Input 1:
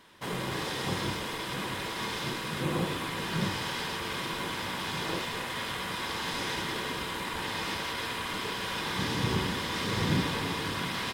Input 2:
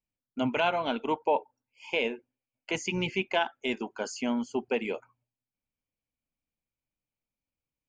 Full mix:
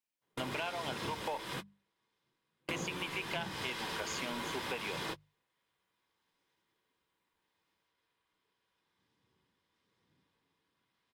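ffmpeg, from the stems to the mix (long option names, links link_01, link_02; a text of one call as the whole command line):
ffmpeg -i stem1.wav -i stem2.wav -filter_complex "[0:a]bandreject=frequency=60:width_type=h:width=6,bandreject=frequency=120:width_type=h:width=6,bandreject=frequency=180:width_type=h:width=6,bandreject=frequency=240:width_type=h:width=6,volume=-2dB[link_01];[1:a]highpass=frequency=950:poles=1,volume=1.5dB,asplit=3[link_02][link_03][link_04];[link_02]atrim=end=1.54,asetpts=PTS-STARTPTS,afade=type=out:start_time=1.536:duration=0.004:curve=hsin[link_05];[link_03]atrim=start=1.54:end=2.65,asetpts=PTS-STARTPTS,volume=0[link_06];[link_04]atrim=start=2.65,asetpts=PTS-STARTPTS,afade=type=in:duration=0.004:curve=hsin[link_07];[link_05][link_06][link_07]concat=n=3:v=0:a=1,asplit=2[link_08][link_09];[link_09]apad=whole_len=490847[link_10];[link_01][link_10]sidechaingate=range=-46dB:threshold=-57dB:ratio=16:detection=peak[link_11];[link_11][link_08]amix=inputs=2:normalize=0,bandreject=frequency=50:width_type=h:width=6,bandreject=frequency=100:width_type=h:width=6,bandreject=frequency=150:width_type=h:width=6,bandreject=frequency=200:width_type=h:width=6,acompressor=threshold=-35dB:ratio=6" out.wav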